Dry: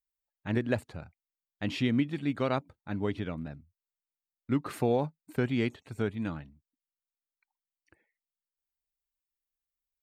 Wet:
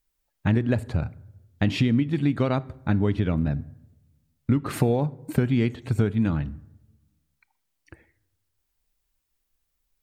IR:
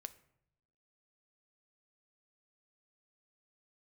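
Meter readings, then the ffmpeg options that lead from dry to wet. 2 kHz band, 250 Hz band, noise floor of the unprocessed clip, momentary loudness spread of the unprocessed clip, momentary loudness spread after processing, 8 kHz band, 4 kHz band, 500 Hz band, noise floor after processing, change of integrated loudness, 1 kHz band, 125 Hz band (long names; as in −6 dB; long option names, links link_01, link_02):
+4.0 dB, +7.5 dB, below −85 dBFS, 14 LU, 8 LU, +8.5 dB, +4.5 dB, +4.0 dB, −77 dBFS, +7.0 dB, +3.5 dB, +11.5 dB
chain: -filter_complex "[0:a]lowshelf=frequency=230:gain=10.5,acompressor=threshold=-32dB:ratio=6,asplit=2[link_01][link_02];[1:a]atrim=start_sample=2205,asetrate=33516,aresample=44100[link_03];[link_02][link_03]afir=irnorm=-1:irlink=0,volume=3.5dB[link_04];[link_01][link_04]amix=inputs=2:normalize=0,volume=7dB"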